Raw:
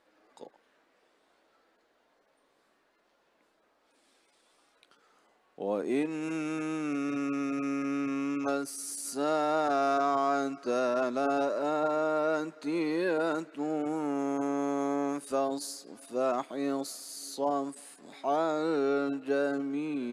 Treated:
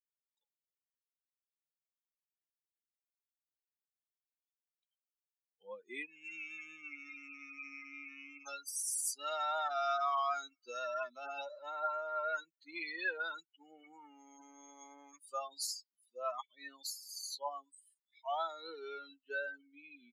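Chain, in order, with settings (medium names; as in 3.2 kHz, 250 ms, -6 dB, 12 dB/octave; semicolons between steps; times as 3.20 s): expander on every frequency bin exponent 3; high-pass 1.4 kHz 12 dB/octave; trim +7.5 dB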